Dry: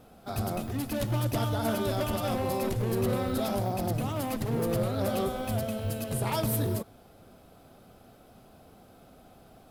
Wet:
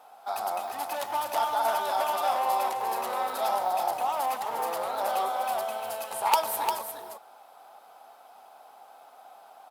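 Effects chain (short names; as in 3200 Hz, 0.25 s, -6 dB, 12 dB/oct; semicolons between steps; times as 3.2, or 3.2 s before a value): resonant high-pass 850 Hz, resonance Q 4.6; wrapped overs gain 12 dB; echo 0.351 s -6.5 dB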